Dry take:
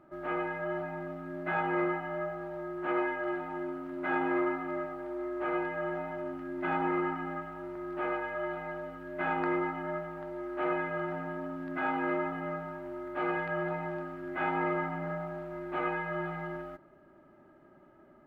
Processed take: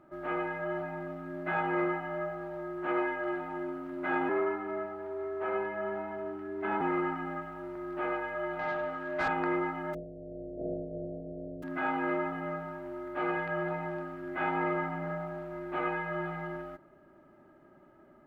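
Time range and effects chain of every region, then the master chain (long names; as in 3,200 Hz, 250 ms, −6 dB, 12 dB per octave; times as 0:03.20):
0:04.29–0:06.81: frequency shifter +36 Hz + high-shelf EQ 2,800 Hz −7.5 dB
0:08.59–0:09.28: parametric band 420 Hz −5 dB 0.51 octaves + mid-hump overdrive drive 18 dB, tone 1,800 Hz, clips at −21.5 dBFS
0:09.93–0:11.62: compressing power law on the bin magnitudes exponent 0.44 + Chebyshev low-pass filter 680 Hz, order 8
whole clip: no processing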